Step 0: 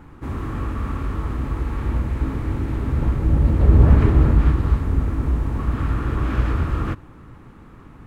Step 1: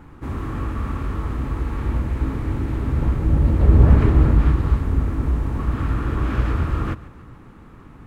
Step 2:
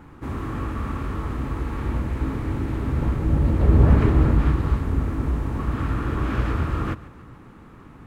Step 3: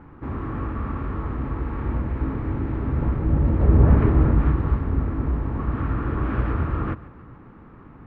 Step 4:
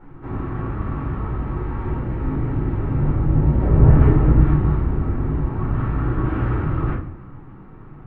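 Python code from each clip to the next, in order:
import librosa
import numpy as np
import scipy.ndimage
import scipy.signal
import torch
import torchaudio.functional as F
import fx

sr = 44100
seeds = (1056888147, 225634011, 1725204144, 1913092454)

y1 = fx.echo_feedback(x, sr, ms=144, feedback_pct=53, wet_db=-19)
y2 = fx.low_shelf(y1, sr, hz=69.0, db=-6.5)
y3 = scipy.signal.sosfilt(scipy.signal.butter(2, 1900.0, 'lowpass', fs=sr, output='sos'), y2)
y4 = fx.room_shoebox(y3, sr, seeds[0], volume_m3=220.0, walls='furnished', distance_m=4.4)
y4 = y4 * librosa.db_to_amplitude(-7.5)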